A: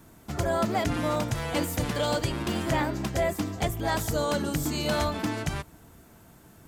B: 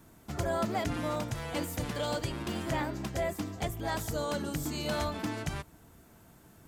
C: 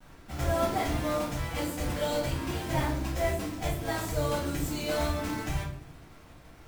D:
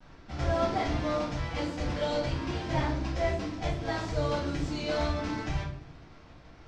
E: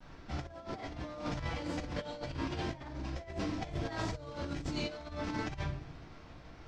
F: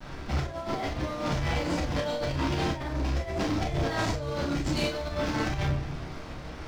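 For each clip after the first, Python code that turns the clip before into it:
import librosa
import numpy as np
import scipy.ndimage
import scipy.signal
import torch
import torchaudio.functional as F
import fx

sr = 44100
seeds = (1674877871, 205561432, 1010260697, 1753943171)

y1 = fx.rider(x, sr, range_db=4, speed_s=2.0)
y1 = y1 * 10.0 ** (-6.0 / 20.0)
y2 = fx.env_lowpass(y1, sr, base_hz=1900.0, full_db=-30.5)
y2 = fx.quant_companded(y2, sr, bits=4)
y2 = fx.room_shoebox(y2, sr, seeds[0], volume_m3=65.0, walls='mixed', distance_m=1.9)
y2 = y2 * 10.0 ** (-7.5 / 20.0)
y3 = scipy.signal.sosfilt(scipy.signal.cheby1(3, 1.0, 5400.0, 'lowpass', fs=sr, output='sos'), y2)
y4 = fx.over_compress(y3, sr, threshold_db=-34.0, ratio=-0.5)
y4 = y4 * 10.0 ** (-4.0 / 20.0)
y5 = fx.leveller(y4, sr, passes=3)
y5 = fx.room_early_taps(y5, sr, ms=(29, 42), db=(-6.5, -9.0))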